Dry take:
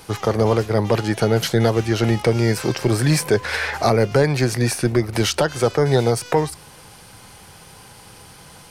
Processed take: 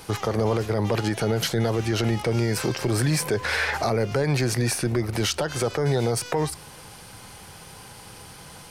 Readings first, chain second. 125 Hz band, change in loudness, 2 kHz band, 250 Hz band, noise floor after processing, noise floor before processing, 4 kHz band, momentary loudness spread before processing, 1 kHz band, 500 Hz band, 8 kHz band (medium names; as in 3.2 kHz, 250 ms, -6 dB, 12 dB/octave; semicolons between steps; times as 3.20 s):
-4.5 dB, -5.0 dB, -3.0 dB, -5.5 dB, -45 dBFS, -45 dBFS, -3.0 dB, 4 LU, -5.5 dB, -6.5 dB, -2.0 dB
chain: peak limiter -14.5 dBFS, peak gain reduction 8.5 dB